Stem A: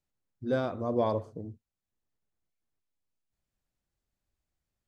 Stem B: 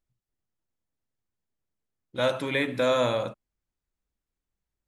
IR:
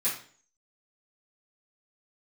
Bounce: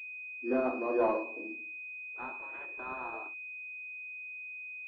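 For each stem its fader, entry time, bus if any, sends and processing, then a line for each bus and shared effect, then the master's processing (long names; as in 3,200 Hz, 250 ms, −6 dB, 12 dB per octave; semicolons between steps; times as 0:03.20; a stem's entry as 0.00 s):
+2.0 dB, 0.00 s, send −5 dB, automatic ducking −9 dB, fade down 1.40 s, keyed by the second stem
−4.0 dB, 0.00 s, no send, gate on every frequency bin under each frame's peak −10 dB weak; high-pass filter 380 Hz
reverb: on, RT60 0.45 s, pre-delay 3 ms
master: Chebyshev high-pass with heavy ripple 240 Hz, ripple 6 dB; soft clipping −18 dBFS, distortion −21 dB; switching amplifier with a slow clock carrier 2,500 Hz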